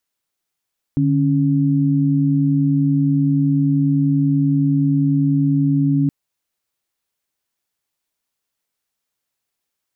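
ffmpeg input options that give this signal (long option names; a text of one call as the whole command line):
ffmpeg -f lavfi -i "aevalsrc='0.158*(sin(2*PI*146.83*t)+sin(2*PI*277.18*t))':duration=5.12:sample_rate=44100" out.wav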